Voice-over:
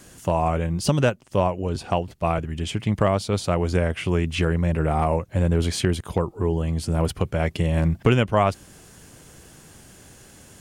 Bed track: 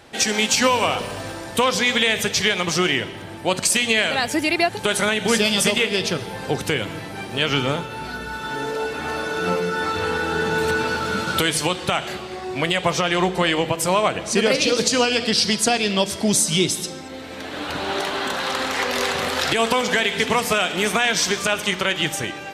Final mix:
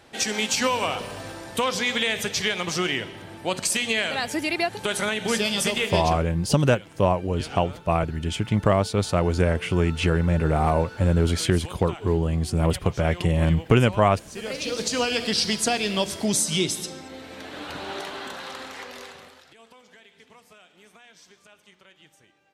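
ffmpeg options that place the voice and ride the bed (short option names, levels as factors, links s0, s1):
-filter_complex "[0:a]adelay=5650,volume=1.06[s0];[1:a]volume=2.82,afade=t=out:st=5.98:d=0.25:silence=0.211349,afade=t=in:st=14.33:d=0.83:silence=0.188365,afade=t=out:st=16.95:d=2.49:silence=0.0398107[s1];[s0][s1]amix=inputs=2:normalize=0"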